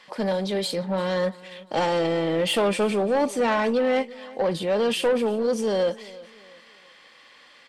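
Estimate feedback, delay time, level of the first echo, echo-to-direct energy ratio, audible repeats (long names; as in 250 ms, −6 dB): 37%, 345 ms, −20.0 dB, −19.5 dB, 2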